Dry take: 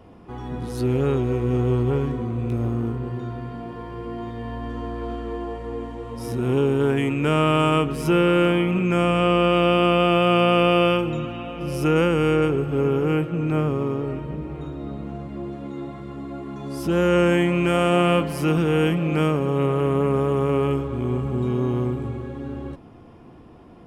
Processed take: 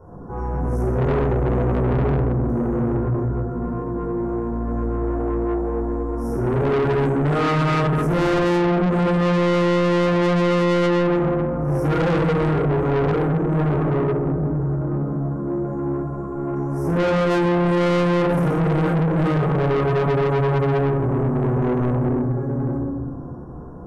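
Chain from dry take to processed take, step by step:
Chebyshev band-stop filter 1,600–5,700 Hz, order 4
high-shelf EQ 2,700 Hz −11 dB
rectangular room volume 810 cubic metres, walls mixed, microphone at 4.6 metres
soft clipping −17 dBFS, distortion −5 dB

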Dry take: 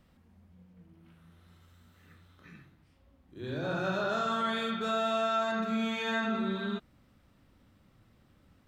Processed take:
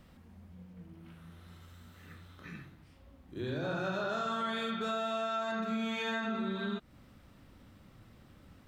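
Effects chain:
downward compressor 3 to 1, threshold −41 dBFS, peak gain reduction 11.5 dB
level +6 dB

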